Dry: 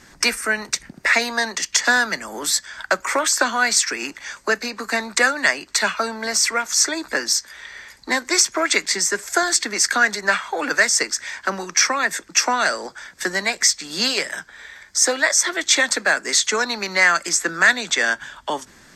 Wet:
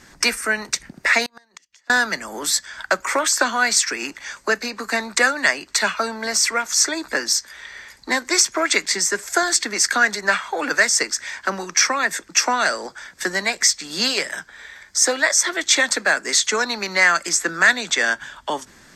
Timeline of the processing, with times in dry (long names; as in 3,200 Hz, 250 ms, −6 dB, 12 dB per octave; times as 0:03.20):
0:01.24–0:01.90: gate with flip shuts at −16 dBFS, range −36 dB